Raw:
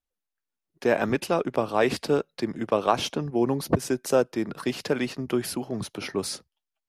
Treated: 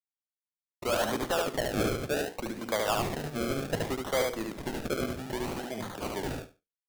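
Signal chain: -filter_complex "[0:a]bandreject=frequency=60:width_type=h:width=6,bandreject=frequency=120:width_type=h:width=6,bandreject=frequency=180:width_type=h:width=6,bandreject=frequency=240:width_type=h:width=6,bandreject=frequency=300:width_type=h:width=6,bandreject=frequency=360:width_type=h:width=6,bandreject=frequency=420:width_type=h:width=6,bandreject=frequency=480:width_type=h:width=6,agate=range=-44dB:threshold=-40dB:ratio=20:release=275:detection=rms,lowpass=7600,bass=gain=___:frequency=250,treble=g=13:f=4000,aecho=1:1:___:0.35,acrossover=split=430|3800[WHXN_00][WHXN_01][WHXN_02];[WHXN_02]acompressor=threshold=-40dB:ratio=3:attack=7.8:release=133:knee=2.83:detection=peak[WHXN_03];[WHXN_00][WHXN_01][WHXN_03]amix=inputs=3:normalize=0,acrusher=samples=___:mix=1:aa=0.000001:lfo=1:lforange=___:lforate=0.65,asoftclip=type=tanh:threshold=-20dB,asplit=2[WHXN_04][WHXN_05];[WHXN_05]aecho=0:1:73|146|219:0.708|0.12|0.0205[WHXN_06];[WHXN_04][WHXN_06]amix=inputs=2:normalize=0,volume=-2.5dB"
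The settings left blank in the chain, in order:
-9, 1.4, 32, 32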